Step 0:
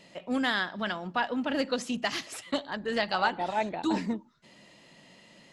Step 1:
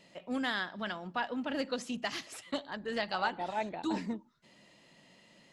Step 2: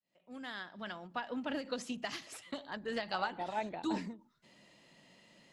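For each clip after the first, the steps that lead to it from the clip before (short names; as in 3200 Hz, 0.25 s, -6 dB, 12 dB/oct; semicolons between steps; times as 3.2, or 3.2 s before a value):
de-esser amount 65%; gain -5.5 dB
opening faded in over 1.41 s; ending taper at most 180 dB/s; gain -1.5 dB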